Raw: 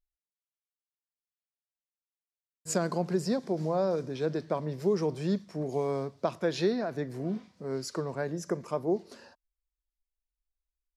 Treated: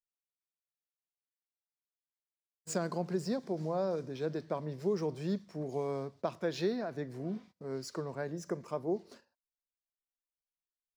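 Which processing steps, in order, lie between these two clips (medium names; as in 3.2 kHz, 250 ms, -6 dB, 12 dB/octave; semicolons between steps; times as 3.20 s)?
median filter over 3 samples; gate -49 dBFS, range -21 dB; trim -5 dB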